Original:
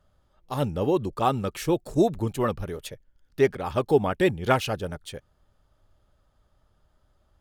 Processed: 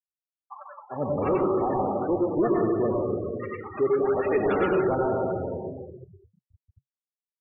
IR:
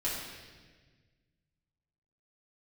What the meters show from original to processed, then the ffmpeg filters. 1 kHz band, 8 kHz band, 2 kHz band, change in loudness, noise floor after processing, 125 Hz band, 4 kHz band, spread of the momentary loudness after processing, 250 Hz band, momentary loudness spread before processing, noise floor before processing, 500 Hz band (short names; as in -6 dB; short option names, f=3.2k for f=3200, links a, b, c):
-0.5 dB, under -35 dB, -3.0 dB, 0.0 dB, under -85 dBFS, -4.5 dB, under -15 dB, 13 LU, +1.0 dB, 15 LU, -68 dBFS, +1.5 dB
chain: -filter_complex "[0:a]acrossover=split=270 2500:gain=0.0794 1 0.0708[a][b][c];[a][b][c]amix=inputs=3:normalize=0,acontrast=30,equalizer=f=86:w=0.75:g=14,asplit=2[d][e];[1:a]atrim=start_sample=2205,asetrate=26019,aresample=44100,adelay=88[f];[e][f]afir=irnorm=-1:irlink=0,volume=-7.5dB[g];[d][g]amix=inputs=2:normalize=0,asoftclip=type=tanh:threshold=-13dB,acrossover=split=990[h][i];[h]adelay=400[j];[j][i]amix=inputs=2:normalize=0,acompressor=mode=upward:threshold=-37dB:ratio=2.5,afftfilt=real='re*gte(hypot(re,im),0.0708)':imag='im*gte(hypot(re,im),0.0708)':win_size=1024:overlap=0.75,flanger=delay=3.1:depth=8.4:regen=-78:speed=0.45:shape=sinusoidal"